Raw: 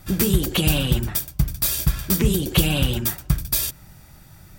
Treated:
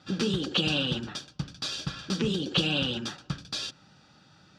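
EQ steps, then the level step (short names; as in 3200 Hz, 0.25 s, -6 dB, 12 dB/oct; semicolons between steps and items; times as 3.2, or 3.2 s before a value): speaker cabinet 270–4800 Hz, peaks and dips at 370 Hz -7 dB, 660 Hz -9 dB, 1000 Hz -7 dB, 1900 Hz -6 dB; bell 2200 Hz -11 dB 0.23 oct; 0.0 dB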